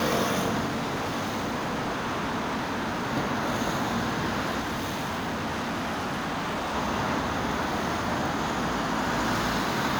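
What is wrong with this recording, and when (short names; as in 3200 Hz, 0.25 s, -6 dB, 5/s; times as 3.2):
0.66–3.12 clipped -25.5 dBFS
4.6–6.76 clipped -27 dBFS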